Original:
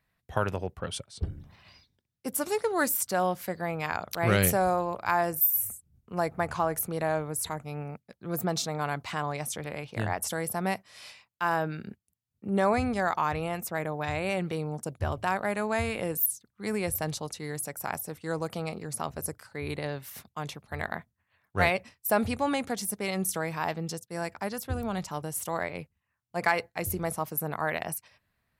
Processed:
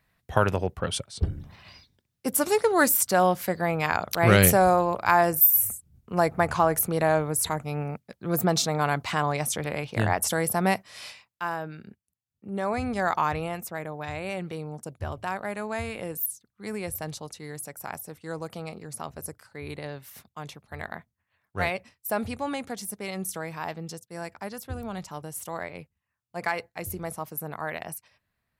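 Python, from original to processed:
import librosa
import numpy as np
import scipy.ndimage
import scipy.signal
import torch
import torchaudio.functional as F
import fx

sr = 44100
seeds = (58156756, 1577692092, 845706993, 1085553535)

y = fx.gain(x, sr, db=fx.line((11.04, 6.0), (11.57, -5.0), (12.59, -5.0), (13.16, 3.5), (13.8, -3.0)))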